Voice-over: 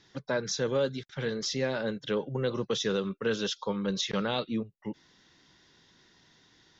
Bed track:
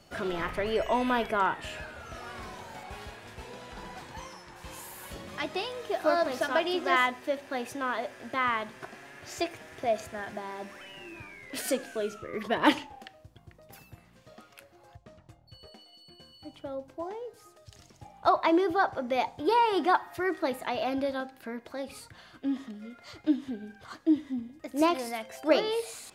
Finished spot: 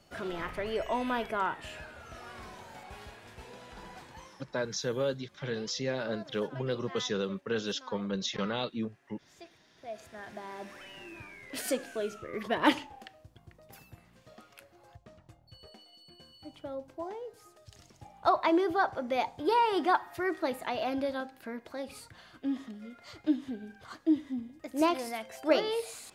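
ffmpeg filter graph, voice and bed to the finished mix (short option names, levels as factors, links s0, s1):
-filter_complex "[0:a]adelay=4250,volume=0.708[s0];[1:a]volume=5.01,afade=t=out:st=3.95:d=0.8:silence=0.158489,afade=t=in:st=9.76:d=0.97:silence=0.11885[s1];[s0][s1]amix=inputs=2:normalize=0"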